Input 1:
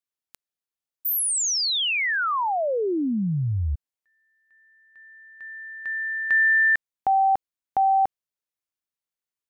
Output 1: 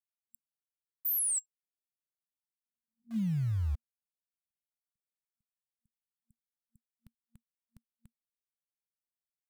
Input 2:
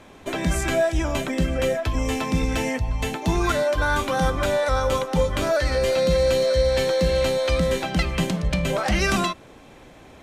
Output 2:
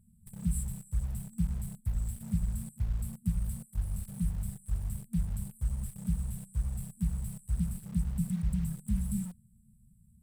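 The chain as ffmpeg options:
-filter_complex "[0:a]afftfilt=real='re*(1-between(b*sr/4096,230,7600))':imag='im*(1-between(b*sr/4096,230,7600))':win_size=4096:overlap=0.75,asplit=2[a][b];[b]acrusher=bits=5:mix=0:aa=0.000001,volume=-9dB[c];[a][c]amix=inputs=2:normalize=0,volume=-9dB"

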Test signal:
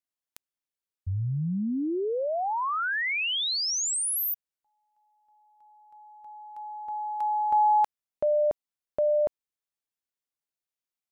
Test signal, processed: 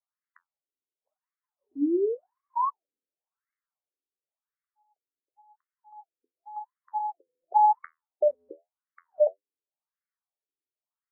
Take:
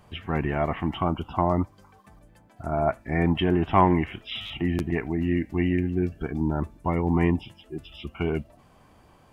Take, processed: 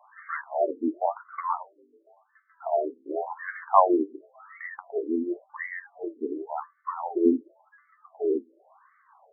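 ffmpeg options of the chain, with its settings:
-af "bandreject=f=500:w=12,flanger=delay=9.6:depth=3.1:regen=61:speed=1.7:shape=triangular,afftfilt=real='re*between(b*sr/1024,340*pow(1600/340,0.5+0.5*sin(2*PI*0.92*pts/sr))/1.41,340*pow(1600/340,0.5+0.5*sin(2*PI*0.92*pts/sr))*1.41)':imag='im*between(b*sr/1024,340*pow(1600/340,0.5+0.5*sin(2*PI*0.92*pts/sr))/1.41,340*pow(1600/340,0.5+0.5*sin(2*PI*0.92*pts/sr))*1.41)':win_size=1024:overlap=0.75,volume=8.5dB"

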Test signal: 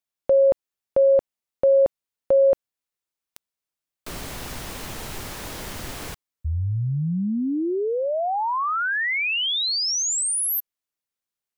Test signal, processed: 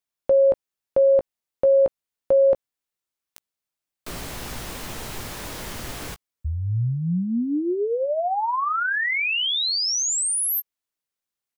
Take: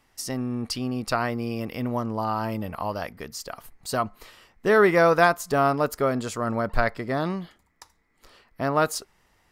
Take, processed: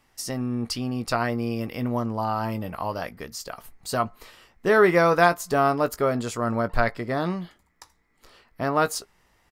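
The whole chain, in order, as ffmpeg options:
-filter_complex "[0:a]asplit=2[a][b];[b]adelay=17,volume=-11dB[c];[a][c]amix=inputs=2:normalize=0"

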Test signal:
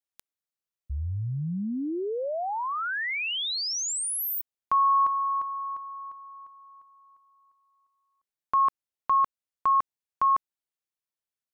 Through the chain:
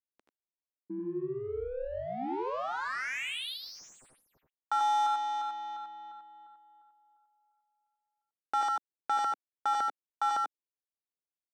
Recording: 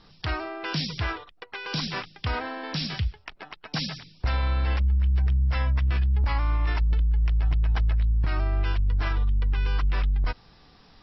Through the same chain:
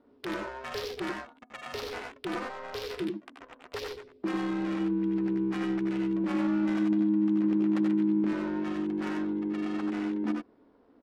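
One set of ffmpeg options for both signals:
-filter_complex "[0:a]aeval=exprs='val(0)*sin(2*PI*260*n/s)':c=same,lowshelf=f=210:t=q:w=1.5:g=-9.5,adynamicsmooth=sensitivity=5:basefreq=980,asplit=2[a][b];[b]aecho=0:1:79|93:0.447|0.596[c];[a][c]amix=inputs=2:normalize=0,volume=-3.5dB"

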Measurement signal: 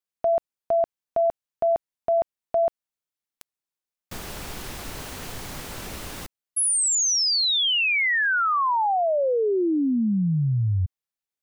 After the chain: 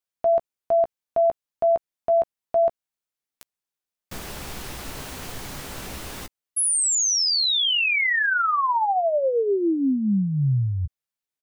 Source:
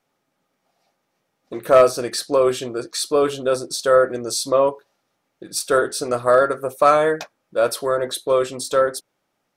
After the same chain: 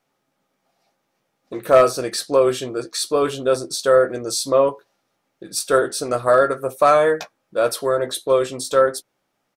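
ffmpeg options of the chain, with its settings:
-filter_complex "[0:a]asplit=2[a][b];[b]adelay=15,volume=-10dB[c];[a][c]amix=inputs=2:normalize=0"

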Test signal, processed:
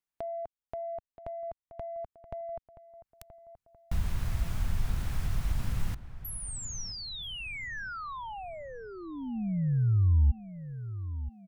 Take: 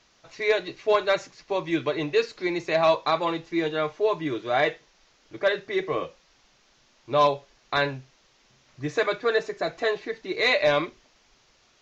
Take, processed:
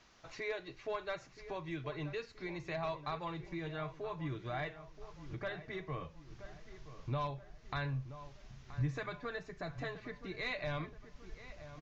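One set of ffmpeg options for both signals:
-filter_complex "[0:a]acrossover=split=2200[a][b];[a]acontrast=37[c];[c][b]amix=inputs=2:normalize=0,equalizer=f=520:w=1.5:g=-3,acompressor=threshold=-42dB:ratio=2,asubboost=boost=10:cutoff=120,asplit=2[d][e];[e]adelay=976,lowpass=f=2k:p=1,volume=-13dB,asplit=2[f][g];[g]adelay=976,lowpass=f=2k:p=1,volume=0.5,asplit=2[h][i];[i]adelay=976,lowpass=f=2k:p=1,volume=0.5,asplit=2[j][k];[k]adelay=976,lowpass=f=2k:p=1,volume=0.5,asplit=2[l][m];[m]adelay=976,lowpass=f=2k:p=1,volume=0.5[n];[d][f][h][j][l][n]amix=inputs=6:normalize=0,volume=-5.5dB"

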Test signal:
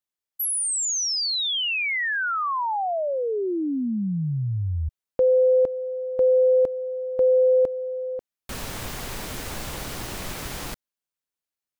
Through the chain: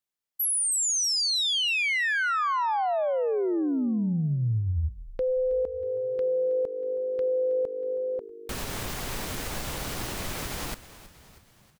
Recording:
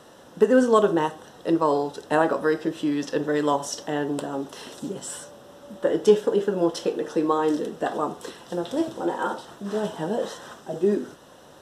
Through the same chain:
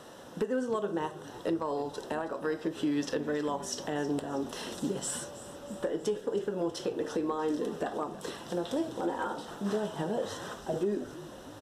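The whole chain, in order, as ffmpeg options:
-filter_complex "[0:a]acompressor=threshold=-23dB:ratio=12:attack=0.12:release=744:knee=1:detection=peak,asplit=2[a][b];[b]asplit=5[c][d][e][f][g];[c]adelay=320,afreqshift=-51,volume=-16dB[h];[d]adelay=640,afreqshift=-102,volume=-21.4dB[i];[e]adelay=960,afreqshift=-153,volume=-26.7dB[j];[f]adelay=1280,afreqshift=-204,volume=-32.1dB[k];[g]adelay=1600,afreqshift=-255,volume=-37.4dB[l];[h][i][j][k][l]amix=inputs=5:normalize=0[m];[a][m]amix=inputs=2:normalize=0"

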